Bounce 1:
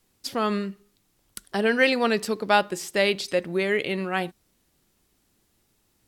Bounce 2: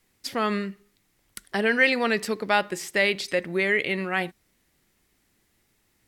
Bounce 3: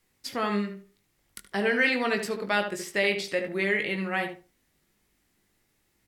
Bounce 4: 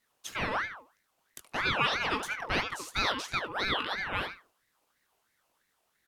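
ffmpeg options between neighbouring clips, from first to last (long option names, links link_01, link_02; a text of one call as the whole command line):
ffmpeg -i in.wav -filter_complex "[0:a]equalizer=frequency=2000:width_type=o:width=0.61:gain=8,asplit=2[link_01][link_02];[link_02]alimiter=limit=-14dB:level=0:latency=1,volume=-2dB[link_03];[link_01][link_03]amix=inputs=2:normalize=0,volume=-6dB" out.wav
ffmpeg -i in.wav -filter_complex "[0:a]asplit=2[link_01][link_02];[link_02]adelay=20,volume=-7dB[link_03];[link_01][link_03]amix=inputs=2:normalize=0,asplit=2[link_04][link_05];[link_05]adelay=73,lowpass=frequency=1800:poles=1,volume=-6dB,asplit=2[link_06][link_07];[link_07]adelay=73,lowpass=frequency=1800:poles=1,volume=0.21,asplit=2[link_08][link_09];[link_09]adelay=73,lowpass=frequency=1800:poles=1,volume=0.21[link_10];[link_04][link_06][link_08][link_10]amix=inputs=4:normalize=0,volume=-4dB" out.wav
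ffmpeg -i in.wav -af "aeval=exprs='val(0)*sin(2*PI*1300*n/s+1300*0.5/3*sin(2*PI*3*n/s))':channel_layout=same,volume=-1.5dB" out.wav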